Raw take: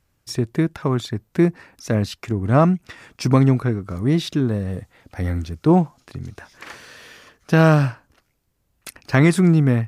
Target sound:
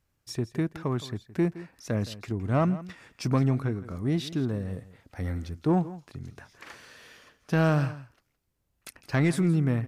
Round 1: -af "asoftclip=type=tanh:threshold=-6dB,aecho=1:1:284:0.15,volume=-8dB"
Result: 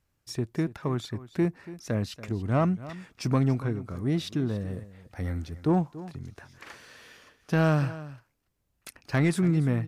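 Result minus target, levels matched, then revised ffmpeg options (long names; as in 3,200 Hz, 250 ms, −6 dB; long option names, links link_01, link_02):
echo 118 ms late
-af "asoftclip=type=tanh:threshold=-6dB,aecho=1:1:166:0.15,volume=-8dB"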